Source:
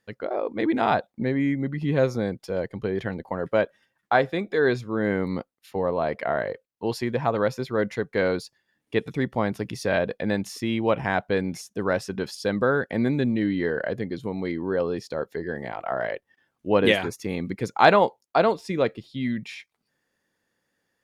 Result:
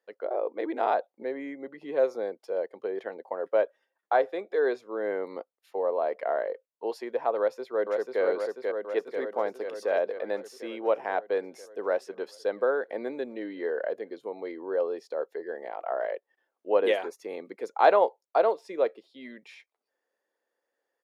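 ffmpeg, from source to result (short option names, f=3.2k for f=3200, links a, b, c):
-filter_complex "[0:a]asplit=2[a][b];[b]afade=t=in:st=7.37:d=0.01,afade=t=out:st=8.22:d=0.01,aecho=0:1:490|980|1470|1960|2450|2940|3430|3920|4410|4900|5390|5880:0.707946|0.495562|0.346893|0.242825|0.169978|0.118984|0.0832891|0.0583024|0.0408117|0.0285682|0.0199977|0.0139984[c];[a][c]amix=inputs=2:normalize=0,highpass=f=470:w=0.5412,highpass=f=470:w=1.3066,tiltshelf=f=830:g=9.5,volume=-3.5dB"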